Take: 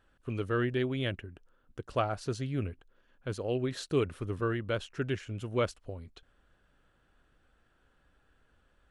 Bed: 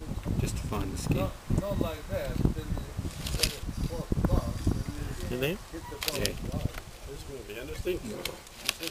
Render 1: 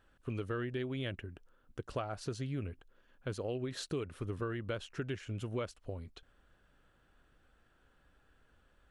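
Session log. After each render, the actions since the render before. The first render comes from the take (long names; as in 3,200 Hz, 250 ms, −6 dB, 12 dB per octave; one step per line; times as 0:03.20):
downward compressor 6 to 1, threshold −34 dBFS, peak gain reduction 11 dB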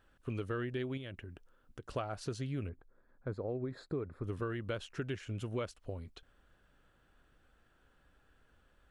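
0:00.97–0:01.83: downward compressor 3 to 1, threshold −43 dBFS
0:02.69–0:04.24: moving average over 15 samples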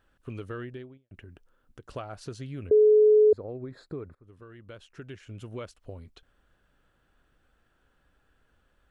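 0:00.57–0:01.11: fade out and dull
0:02.71–0:03.33: beep over 426 Hz −14.5 dBFS
0:04.15–0:05.79: fade in, from −20.5 dB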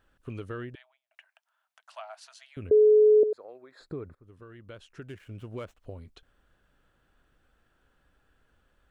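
0:00.75–0:02.57: Chebyshev high-pass with heavy ripple 630 Hz, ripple 3 dB
0:03.23–0:03.80: high-pass filter 720 Hz
0:05.02–0:05.78: running median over 9 samples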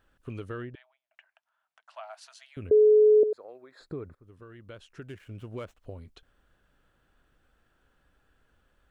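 0:00.62–0:02.03: low-pass filter 2,500 Hz 6 dB per octave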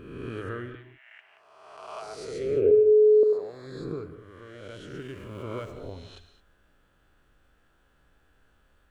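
peak hold with a rise ahead of every peak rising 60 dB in 1.40 s
reverb whose tail is shaped and stops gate 240 ms flat, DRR 9 dB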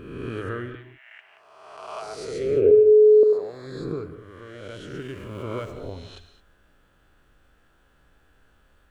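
level +4 dB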